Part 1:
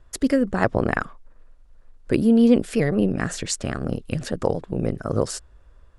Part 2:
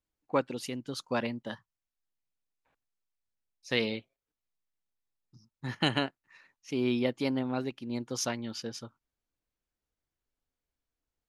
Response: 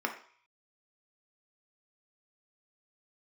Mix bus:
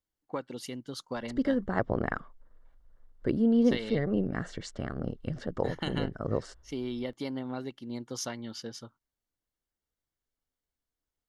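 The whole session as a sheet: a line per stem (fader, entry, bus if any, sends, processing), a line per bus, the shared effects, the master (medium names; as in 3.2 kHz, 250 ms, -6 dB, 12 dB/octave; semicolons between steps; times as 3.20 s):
-8.0 dB, 1.15 s, no send, low-pass 5.7 kHz 12 dB/octave; treble shelf 4.1 kHz -9.5 dB
-2.0 dB, 0.00 s, no send, compression 5:1, threshold -29 dBFS, peak gain reduction 7.5 dB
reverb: none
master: Butterworth band-stop 2.5 kHz, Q 6.8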